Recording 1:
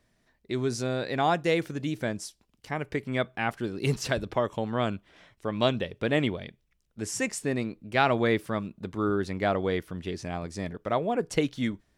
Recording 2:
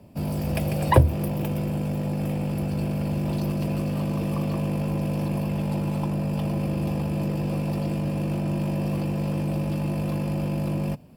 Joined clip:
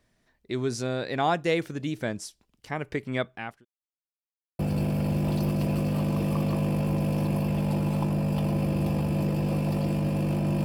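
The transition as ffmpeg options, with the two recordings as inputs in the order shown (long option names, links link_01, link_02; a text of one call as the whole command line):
ffmpeg -i cue0.wav -i cue1.wav -filter_complex "[0:a]apad=whole_dur=10.64,atrim=end=10.64,asplit=2[link_01][link_02];[link_01]atrim=end=3.65,asetpts=PTS-STARTPTS,afade=type=out:start_time=3.16:duration=0.49[link_03];[link_02]atrim=start=3.65:end=4.59,asetpts=PTS-STARTPTS,volume=0[link_04];[1:a]atrim=start=2.6:end=8.65,asetpts=PTS-STARTPTS,afade=type=in:duration=0.004:curve=hsin[link_05];[link_03][link_04][link_05]concat=n=3:v=0:a=1" out.wav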